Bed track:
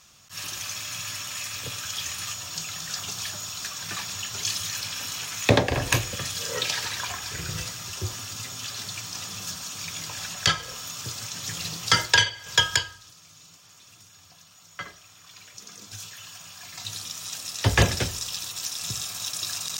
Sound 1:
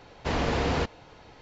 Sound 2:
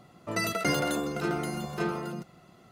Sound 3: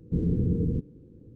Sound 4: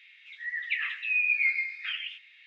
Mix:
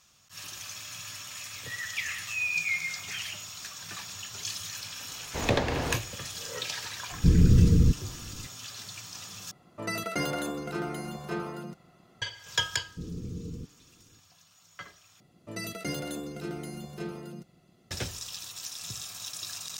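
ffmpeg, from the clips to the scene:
-filter_complex "[3:a]asplit=2[a][b];[2:a]asplit=2[c][d];[0:a]volume=-7.5dB[e];[a]aemphasis=mode=reproduction:type=bsi[f];[d]equalizer=f=1.1k:w=0.83:g=-10[g];[e]asplit=3[h][i][j];[h]atrim=end=9.514[k];[c]atrim=end=2.71,asetpts=PTS-STARTPTS,volume=-3.5dB[l];[i]atrim=start=12.216:end=15.204[m];[g]atrim=end=2.71,asetpts=PTS-STARTPTS,volume=-4.5dB[n];[j]atrim=start=17.906[o];[4:a]atrim=end=2.46,asetpts=PTS-STARTPTS,volume=-4dB,afade=t=in:d=0.004:c=hsin,afade=t=out:st=2.456:d=0.004:c=hsin,adelay=1260[p];[1:a]atrim=end=1.41,asetpts=PTS-STARTPTS,volume=-5.5dB,afade=t=in:d=0.004:c=hsin,afade=t=out:st=1.406:d=0.004:c=hsin,adelay=224469S[q];[f]atrim=end=1.35,asetpts=PTS-STARTPTS,volume=-2.5dB,afade=t=in:d=0.004:c=hsin,afade=t=out:st=1.346:d=0.004:c=hsin,adelay=7120[r];[b]atrim=end=1.35,asetpts=PTS-STARTPTS,volume=-12.5dB,afade=t=in:d=0.004:c=hsin,afade=t=out:st=1.346:d=0.004:c=hsin,adelay=12850[s];[k][l]acrossfade=d=0.004:c1=hsin:c2=hsin[t];[t][m]acrossfade=d=0.004:c1=hsin:c2=hsin[u];[u][n]acrossfade=d=0.004:c1=hsin:c2=hsin[v];[v][o]acrossfade=d=0.004:c1=hsin:c2=hsin[w];[w][p][q][r][s]amix=inputs=5:normalize=0"

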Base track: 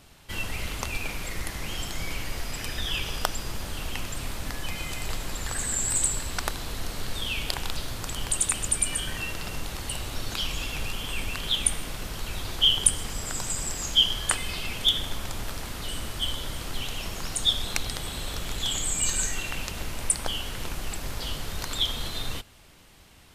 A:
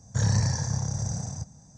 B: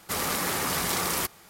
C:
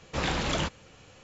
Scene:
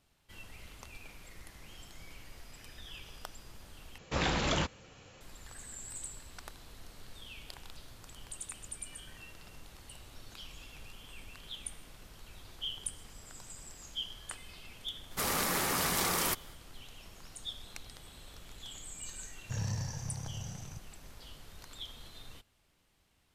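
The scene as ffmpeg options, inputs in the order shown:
-filter_complex "[0:a]volume=-18.5dB,asplit=2[a][b];[a]atrim=end=3.984[c];[3:a]atrim=end=1.23,asetpts=PTS-STARTPTS,volume=-2dB[d];[b]atrim=start=5.206[e];[2:a]atrim=end=1.49,asetpts=PTS-STARTPTS,volume=-3.5dB,afade=t=in:d=0.05,afade=t=out:st=1.44:d=0.05,adelay=665028S[f];[1:a]atrim=end=1.77,asetpts=PTS-STARTPTS,volume=-12dB,afade=t=in:d=0.004:c=hsin,afade=t=out:st=1.766:d=0.004:c=hsin,adelay=19350[g];[c][d]acrossfade=d=0.004:c1=hsin:c2=hsin[h];[h][e]acrossfade=d=0.004:c1=hsin:c2=hsin[i];[i][f][g]amix=inputs=3:normalize=0"

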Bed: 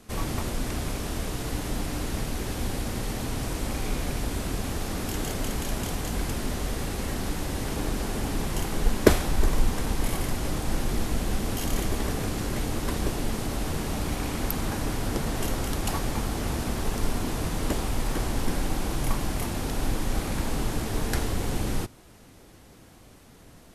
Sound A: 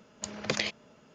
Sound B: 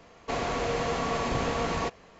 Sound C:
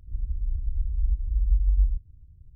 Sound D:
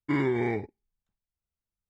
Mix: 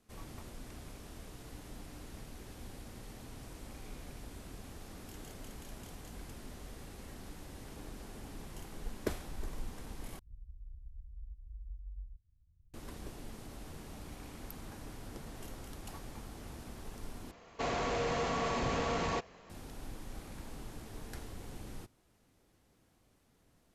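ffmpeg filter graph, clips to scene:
-filter_complex "[0:a]volume=-18.5dB[a];[3:a]acompressor=threshold=-31dB:ratio=2:attack=5.6:release=999:knee=1:detection=peak[b];[2:a]asoftclip=type=tanh:threshold=-23dB[c];[a]asplit=3[d][e][f];[d]atrim=end=10.194[g];[b]atrim=end=2.55,asetpts=PTS-STARTPTS,volume=-16dB[h];[e]atrim=start=12.736:end=17.314[i];[c]atrim=end=2.19,asetpts=PTS-STARTPTS,volume=-3dB[j];[f]atrim=start=19.496[k];[g][h]acrossfade=d=0.004:c1=hsin:c2=hsin[l];[l][i]acrossfade=d=0.004:c1=hsin:c2=hsin[m];[m][j]acrossfade=d=0.004:c1=hsin:c2=hsin[n];[n][k]acrossfade=d=0.004:c1=hsin:c2=hsin"

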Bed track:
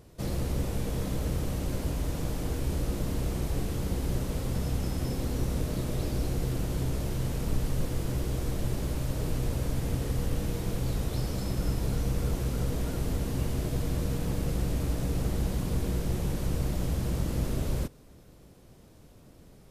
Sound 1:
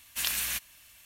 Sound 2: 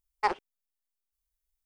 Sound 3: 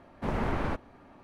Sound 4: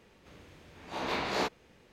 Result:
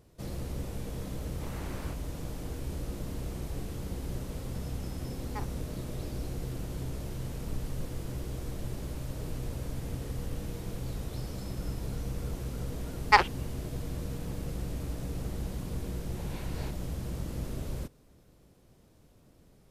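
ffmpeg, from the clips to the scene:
-filter_complex "[2:a]asplit=2[a][b];[0:a]volume=-6.5dB[c];[3:a]crystalizer=i=6.5:c=0[d];[b]equalizer=f=3.4k:w=0.31:g=13.5[e];[4:a]asuperstop=centerf=1200:order=4:qfactor=6.2[f];[d]atrim=end=1.23,asetpts=PTS-STARTPTS,volume=-17dB,afade=t=in:d=0.004:c=hsin,afade=t=out:st=1.226:d=0.004:c=hsin,adelay=1180[g];[a]atrim=end=1.65,asetpts=PTS-STARTPTS,volume=-15dB,afade=t=in:d=0.004:c=hsin,afade=t=out:st=1.646:d=0.004:c=hsin,adelay=5120[h];[e]atrim=end=1.65,asetpts=PTS-STARTPTS,afade=t=in:d=0.004:c=hsin,afade=t=out:st=1.646:d=0.004:c=hsin,adelay=12890[i];[f]atrim=end=1.92,asetpts=PTS-STARTPTS,volume=-15.5dB,afade=t=in:d=0.004:c=hsin,afade=t=out:st=1.916:d=0.004:c=hsin,adelay=15230[j];[c][g][h][i][j]amix=inputs=5:normalize=0"

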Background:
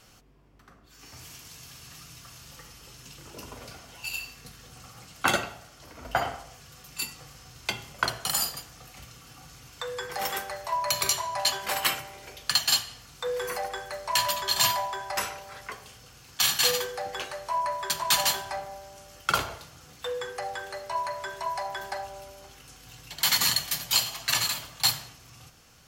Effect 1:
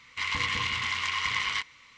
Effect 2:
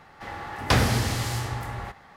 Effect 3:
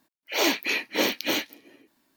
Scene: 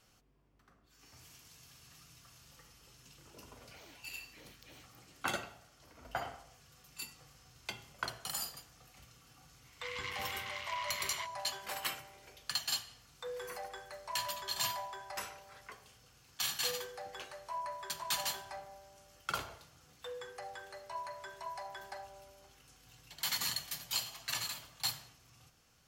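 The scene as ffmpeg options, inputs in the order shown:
-filter_complex "[0:a]volume=-12dB[a];[3:a]acompressor=threshold=-42dB:ratio=6:attack=3.2:release=140:knee=1:detection=peak,atrim=end=2.16,asetpts=PTS-STARTPTS,volume=-14.5dB,afade=t=in:d=0.004:c=hsin,afade=t=out:st=2.156:d=0.004:c=hsin,adelay=3420[b];[1:a]atrim=end=1.97,asetpts=PTS-STARTPTS,volume=-13dB,afade=t=in:d=0.004:c=hsin,afade=t=out:st=1.966:d=0.004:c=hsin,adelay=9640[c];[a][b][c]amix=inputs=3:normalize=0"

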